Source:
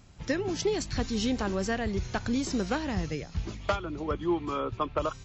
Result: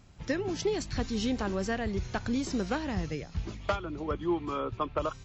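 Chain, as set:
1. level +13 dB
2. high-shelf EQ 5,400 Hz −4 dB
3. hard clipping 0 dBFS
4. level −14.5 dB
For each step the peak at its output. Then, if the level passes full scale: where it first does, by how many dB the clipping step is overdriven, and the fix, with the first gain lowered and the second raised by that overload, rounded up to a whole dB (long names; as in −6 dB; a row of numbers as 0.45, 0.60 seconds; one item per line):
−4.5, −4.5, −4.5, −19.0 dBFS
no step passes full scale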